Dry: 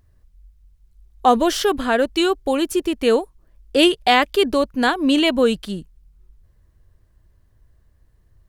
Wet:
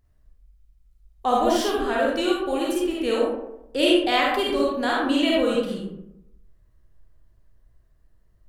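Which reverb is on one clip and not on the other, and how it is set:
comb and all-pass reverb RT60 0.86 s, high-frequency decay 0.45×, pre-delay 10 ms, DRR −4.5 dB
level −9.5 dB

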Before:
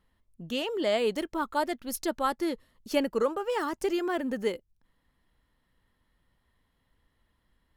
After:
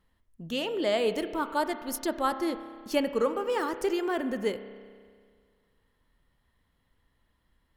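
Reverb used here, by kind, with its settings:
spring reverb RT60 1.9 s, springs 30 ms, chirp 65 ms, DRR 10 dB

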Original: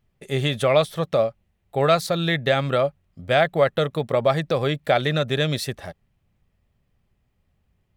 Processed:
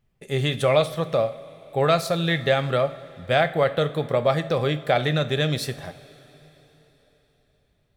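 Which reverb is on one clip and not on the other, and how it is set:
coupled-rooms reverb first 0.42 s, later 4.2 s, from −18 dB, DRR 9.5 dB
level −1.5 dB

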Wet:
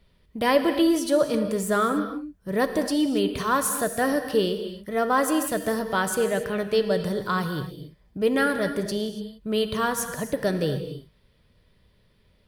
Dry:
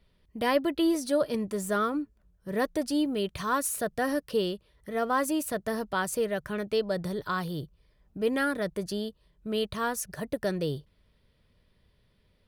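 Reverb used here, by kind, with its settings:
reverb whose tail is shaped and stops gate 310 ms flat, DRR 7.5 dB
level +4.5 dB

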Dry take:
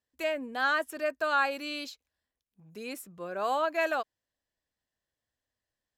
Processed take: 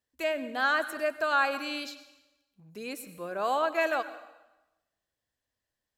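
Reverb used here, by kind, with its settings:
dense smooth reverb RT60 1 s, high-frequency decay 0.95×, pre-delay 85 ms, DRR 13 dB
level +1 dB

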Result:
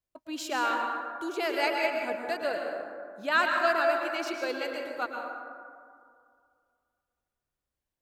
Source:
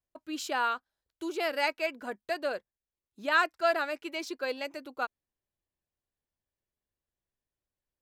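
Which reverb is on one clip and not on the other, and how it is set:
dense smooth reverb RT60 2.2 s, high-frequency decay 0.35×, pre-delay 100 ms, DRR 1 dB

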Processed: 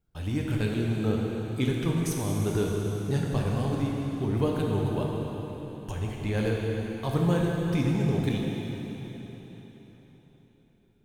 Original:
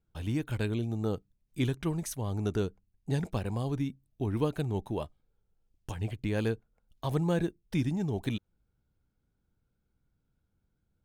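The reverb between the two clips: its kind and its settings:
dense smooth reverb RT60 4.2 s, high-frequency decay 0.95×, DRR −2 dB
level +1 dB

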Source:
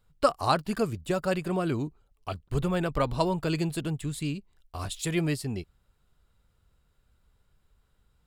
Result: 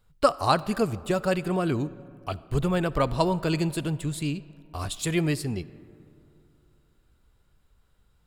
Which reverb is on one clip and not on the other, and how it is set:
comb and all-pass reverb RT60 2.8 s, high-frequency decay 0.4×, pre-delay 15 ms, DRR 18 dB
level +2.5 dB

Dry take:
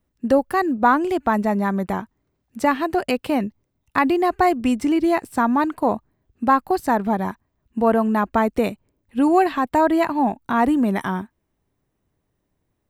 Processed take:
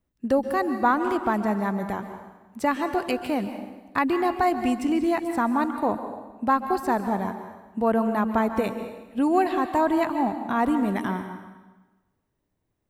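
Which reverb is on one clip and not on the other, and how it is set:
dense smooth reverb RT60 1.2 s, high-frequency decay 0.9×, pre-delay 120 ms, DRR 8 dB
level −5 dB

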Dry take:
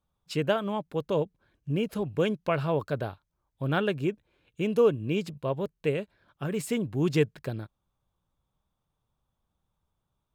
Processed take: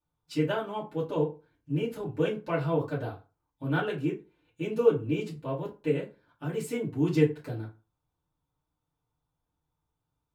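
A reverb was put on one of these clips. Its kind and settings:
feedback delay network reverb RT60 0.31 s, low-frequency decay 1×, high-frequency decay 0.65×, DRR −8 dB
level −11.5 dB

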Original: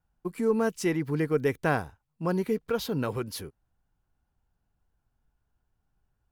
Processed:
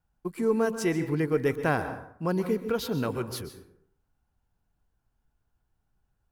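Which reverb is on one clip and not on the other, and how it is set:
dense smooth reverb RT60 0.66 s, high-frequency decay 0.55×, pre-delay 115 ms, DRR 10 dB

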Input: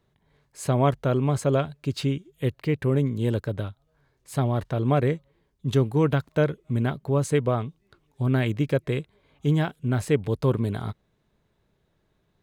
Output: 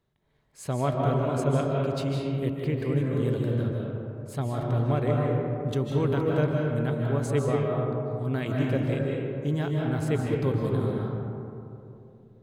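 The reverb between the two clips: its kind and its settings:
comb and all-pass reverb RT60 2.9 s, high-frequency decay 0.3×, pre-delay 115 ms, DRR −2 dB
level −6.5 dB

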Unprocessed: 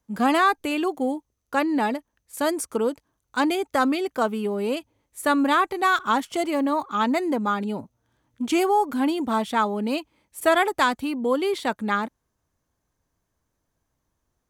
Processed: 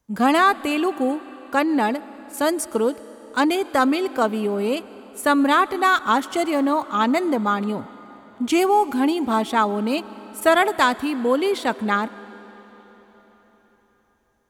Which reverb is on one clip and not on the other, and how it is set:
comb and all-pass reverb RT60 4.6 s, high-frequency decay 0.9×, pre-delay 80 ms, DRR 17.5 dB
level +3 dB

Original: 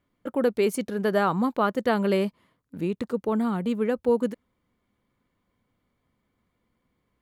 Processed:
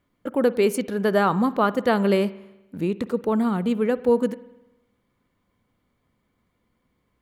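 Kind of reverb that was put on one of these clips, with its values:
spring reverb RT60 1 s, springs 50 ms, chirp 35 ms, DRR 17 dB
level +3 dB

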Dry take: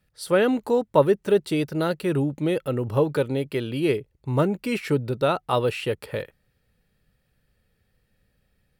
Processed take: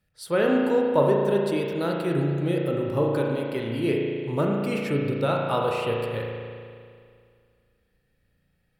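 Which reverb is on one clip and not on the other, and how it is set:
spring reverb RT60 2.2 s, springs 35 ms, chirp 70 ms, DRR −1 dB
level −4.5 dB

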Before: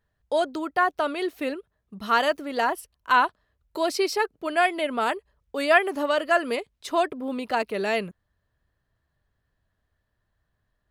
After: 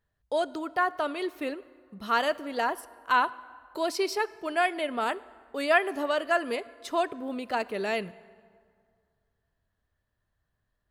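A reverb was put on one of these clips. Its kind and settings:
dense smooth reverb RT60 2.1 s, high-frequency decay 0.6×, DRR 18 dB
level −4 dB

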